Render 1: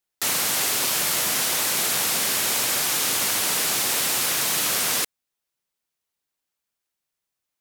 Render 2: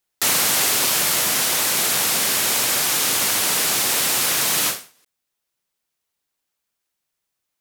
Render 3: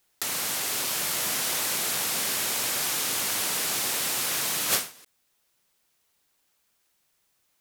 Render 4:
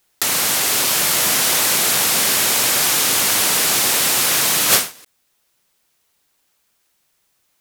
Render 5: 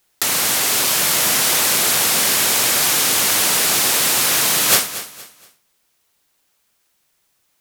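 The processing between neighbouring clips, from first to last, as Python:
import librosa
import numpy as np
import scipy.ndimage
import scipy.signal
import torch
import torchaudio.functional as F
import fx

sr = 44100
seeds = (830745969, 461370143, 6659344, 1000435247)

y1 = fx.rider(x, sr, range_db=10, speed_s=2.0)
y1 = fx.end_taper(y1, sr, db_per_s=160.0)
y1 = F.gain(torch.from_numpy(y1), 3.5).numpy()
y2 = fx.over_compress(y1, sr, threshold_db=-28.0, ratio=-1.0)
y3 = fx.leveller(y2, sr, passes=1)
y3 = F.gain(torch.from_numpy(y3), 7.5).numpy()
y4 = fx.echo_feedback(y3, sr, ms=234, feedback_pct=31, wet_db=-14)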